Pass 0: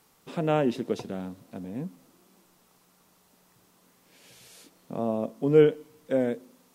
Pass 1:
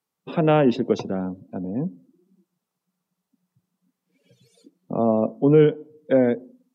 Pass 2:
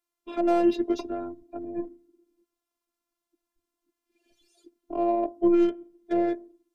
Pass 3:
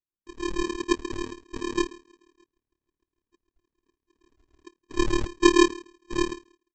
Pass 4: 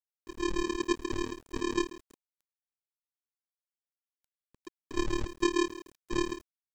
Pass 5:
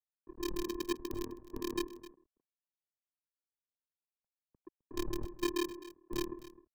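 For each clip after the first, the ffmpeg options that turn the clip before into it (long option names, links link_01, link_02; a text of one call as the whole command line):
ffmpeg -i in.wav -filter_complex "[0:a]afftdn=noise_reduction=29:noise_floor=-48,highpass=80,acrossover=split=220[link_01][link_02];[link_02]alimiter=limit=-17dB:level=0:latency=1:release=341[link_03];[link_01][link_03]amix=inputs=2:normalize=0,volume=8.5dB" out.wav
ffmpeg -i in.wav -filter_complex "[0:a]acrossover=split=810[link_01][link_02];[link_02]asoftclip=type=tanh:threshold=-30dB[link_03];[link_01][link_03]amix=inputs=2:normalize=0,afftfilt=real='hypot(re,im)*cos(PI*b)':imag='0':win_size=512:overlap=0.75" out.wav
ffmpeg -i in.wav -af "dynaudnorm=framelen=140:gausssize=11:maxgain=16dB,aresample=16000,acrusher=samples=23:mix=1:aa=0.000001,aresample=44100,tremolo=f=37:d=0.889,volume=-5dB" out.wav
ffmpeg -i in.wav -af "aeval=exprs='0.596*(cos(1*acos(clip(val(0)/0.596,-1,1)))-cos(1*PI/2))+0.0188*(cos(4*acos(clip(val(0)/0.596,-1,1)))-cos(4*PI/2))':channel_layout=same,acompressor=threshold=-25dB:ratio=6,aeval=exprs='val(0)*gte(abs(val(0)),0.00299)':channel_layout=same" out.wav
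ffmpeg -i in.wav -filter_complex "[0:a]acrossover=split=180|1200[link_01][link_02][link_03];[link_03]acrusher=bits=4:mix=0:aa=0.000001[link_04];[link_01][link_02][link_04]amix=inputs=3:normalize=0,aecho=1:1:259:0.15,volume=-6dB" out.wav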